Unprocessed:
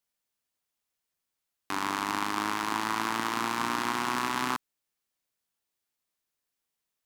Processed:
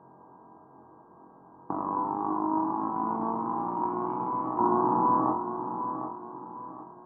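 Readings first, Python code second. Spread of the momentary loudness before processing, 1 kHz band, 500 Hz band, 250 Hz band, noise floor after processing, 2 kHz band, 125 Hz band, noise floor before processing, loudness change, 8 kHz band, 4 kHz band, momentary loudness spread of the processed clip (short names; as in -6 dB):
3 LU, +4.5 dB, +8.0 dB, +6.0 dB, -54 dBFS, under -20 dB, +5.5 dB, -85 dBFS, +1.0 dB, under -40 dB, under -40 dB, 16 LU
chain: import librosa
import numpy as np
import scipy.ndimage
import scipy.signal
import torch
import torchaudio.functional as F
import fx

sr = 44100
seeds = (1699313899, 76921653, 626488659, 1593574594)

y = fx.bin_compress(x, sr, power=0.6)
y = scipy.signal.sosfilt(scipy.signal.ellip(4, 1.0, 60, 980.0, 'lowpass', fs=sr, output='sos'), y)
y = fx.echo_feedback(y, sr, ms=754, feedback_pct=37, wet_db=-10.5)
y = fx.over_compress(y, sr, threshold_db=-40.0, ratio=-1.0)
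y = scipy.signal.sosfilt(scipy.signal.butter(2, 88.0, 'highpass', fs=sr, output='sos'), y)
y = fx.notch(y, sr, hz=530.0, q=12.0)
y = y + 0.34 * np.pad(y, (int(6.2 * sr / 1000.0), 0))[:len(y)]
y = fx.room_flutter(y, sr, wall_m=3.8, rt60_s=0.31)
y = fx.dmg_buzz(y, sr, base_hz=400.0, harmonics=4, level_db=-77.0, tilt_db=-4, odd_only=False)
y = y * 10.0 ** (9.0 / 20.0)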